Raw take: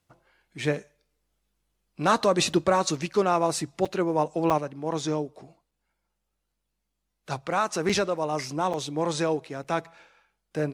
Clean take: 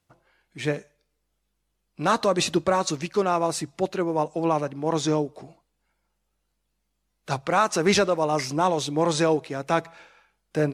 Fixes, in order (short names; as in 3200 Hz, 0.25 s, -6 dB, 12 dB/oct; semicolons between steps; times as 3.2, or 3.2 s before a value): interpolate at 2.53/3.85/4.5/5.71/7.89/8.73/9.64, 5.8 ms; gain 0 dB, from 4.58 s +4.5 dB